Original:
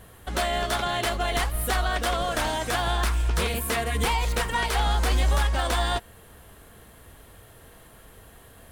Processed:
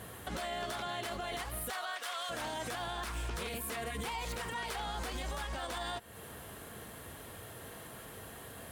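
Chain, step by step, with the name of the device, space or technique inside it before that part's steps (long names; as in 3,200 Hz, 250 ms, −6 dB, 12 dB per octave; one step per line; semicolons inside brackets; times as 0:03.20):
0:01.69–0:02.29: high-pass filter 540 Hz → 1,500 Hz 12 dB per octave
podcast mastering chain (high-pass filter 99 Hz 12 dB per octave; downward compressor 3 to 1, threshold −37 dBFS, peak gain reduction 11.5 dB; brickwall limiter −33 dBFS, peak gain reduction 10.5 dB; level +3.5 dB; MP3 128 kbit/s 44,100 Hz)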